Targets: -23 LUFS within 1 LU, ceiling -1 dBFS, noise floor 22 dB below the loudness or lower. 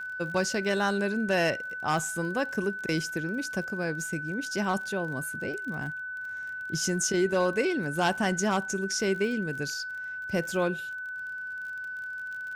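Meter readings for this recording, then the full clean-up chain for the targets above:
tick rate 34 per s; steady tone 1.5 kHz; tone level -34 dBFS; loudness -29.5 LUFS; peak level -12.5 dBFS; loudness target -23.0 LUFS
-> de-click; band-stop 1.5 kHz, Q 30; trim +6.5 dB

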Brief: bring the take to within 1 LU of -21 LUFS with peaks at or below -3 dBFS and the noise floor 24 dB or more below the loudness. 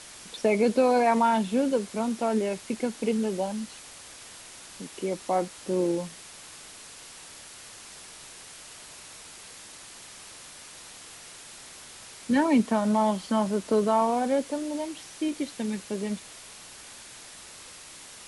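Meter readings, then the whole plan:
noise floor -46 dBFS; noise floor target -51 dBFS; loudness -26.5 LUFS; peak level -11.5 dBFS; loudness target -21.0 LUFS
-> noise reduction 6 dB, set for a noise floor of -46 dBFS; trim +5.5 dB

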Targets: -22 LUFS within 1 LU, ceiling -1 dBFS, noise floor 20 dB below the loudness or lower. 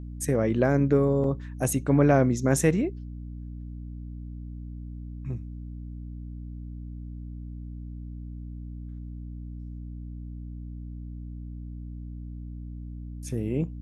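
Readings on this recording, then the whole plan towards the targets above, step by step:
dropouts 1; longest dropout 1.6 ms; hum 60 Hz; highest harmonic 300 Hz; hum level -35 dBFS; loudness -25.0 LUFS; peak level -8.0 dBFS; loudness target -22.0 LUFS
-> interpolate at 1.24 s, 1.6 ms; de-hum 60 Hz, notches 5; trim +3 dB

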